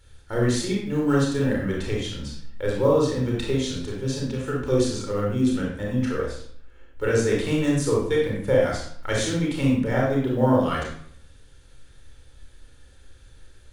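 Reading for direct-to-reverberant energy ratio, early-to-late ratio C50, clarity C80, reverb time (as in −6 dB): −3.5 dB, 1.5 dB, 5.5 dB, 0.60 s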